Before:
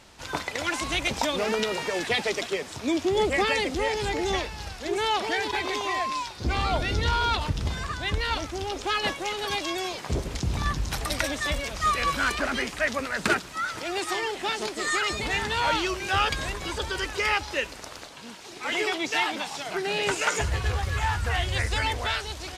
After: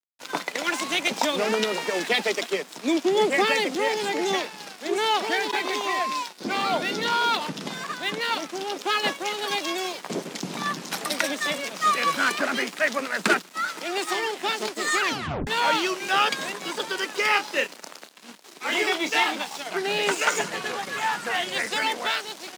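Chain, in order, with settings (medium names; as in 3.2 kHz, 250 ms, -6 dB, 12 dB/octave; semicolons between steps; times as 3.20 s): 17.27–19.35 s: doubling 29 ms -7 dB; crossover distortion -41.5 dBFS; steep high-pass 170 Hz 48 dB/octave; 15.01 s: tape stop 0.46 s; trim +3.5 dB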